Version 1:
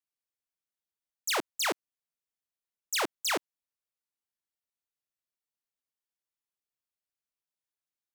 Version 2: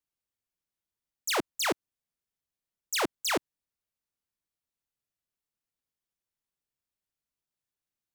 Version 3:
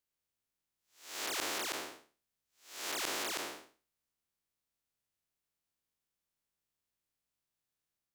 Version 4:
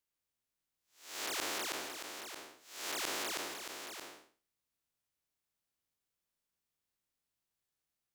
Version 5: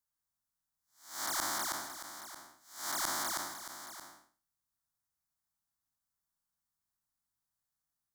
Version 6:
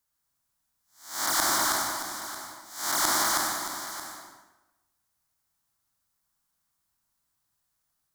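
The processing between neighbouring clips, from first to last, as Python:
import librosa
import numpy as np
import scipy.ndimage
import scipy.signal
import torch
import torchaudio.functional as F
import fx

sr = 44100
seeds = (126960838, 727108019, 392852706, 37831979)

y1 = fx.low_shelf(x, sr, hz=280.0, db=10.0)
y2 = fx.spec_blur(y1, sr, span_ms=312.0)
y2 = fx.transient(y2, sr, attack_db=6, sustain_db=1)
y2 = F.gain(torch.from_numpy(y2), 3.0).numpy()
y3 = y2 + 10.0 ** (-8.0 / 20.0) * np.pad(y2, (int(624 * sr / 1000.0), 0))[:len(y2)]
y3 = F.gain(torch.from_numpy(y3), -1.0).numpy()
y4 = fx.fixed_phaser(y3, sr, hz=1100.0, stages=4)
y4 = fx.upward_expand(y4, sr, threshold_db=-52.0, expansion=1.5)
y4 = F.gain(torch.from_numpy(y4), 7.5).numpy()
y5 = fx.rev_plate(y4, sr, seeds[0], rt60_s=1.0, hf_ratio=0.75, predelay_ms=85, drr_db=2.5)
y5 = F.gain(torch.from_numpy(y5), 8.5).numpy()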